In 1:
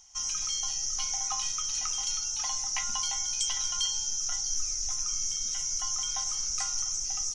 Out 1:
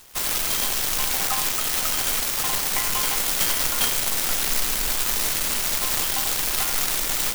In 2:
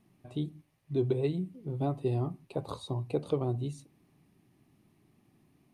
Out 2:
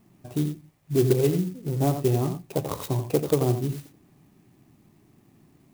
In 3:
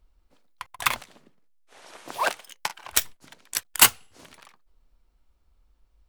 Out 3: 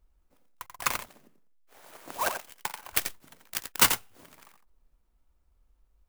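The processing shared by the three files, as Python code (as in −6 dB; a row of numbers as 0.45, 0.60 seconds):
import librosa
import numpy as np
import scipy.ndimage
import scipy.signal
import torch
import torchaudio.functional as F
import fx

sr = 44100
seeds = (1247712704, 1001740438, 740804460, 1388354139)

p1 = x + fx.echo_single(x, sr, ms=87, db=-8.5, dry=0)
p2 = fx.clock_jitter(p1, sr, seeds[0], jitter_ms=0.062)
y = librosa.util.normalize(p2) * 10.0 ** (-9 / 20.0)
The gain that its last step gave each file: +8.0, +7.5, −4.0 decibels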